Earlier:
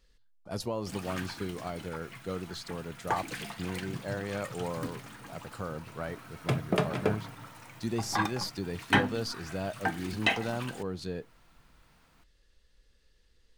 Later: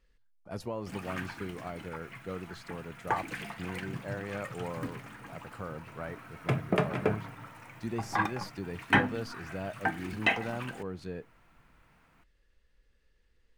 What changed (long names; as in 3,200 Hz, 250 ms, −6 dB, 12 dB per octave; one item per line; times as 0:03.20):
speech −3.0 dB
master: add high shelf with overshoot 3,000 Hz −6 dB, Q 1.5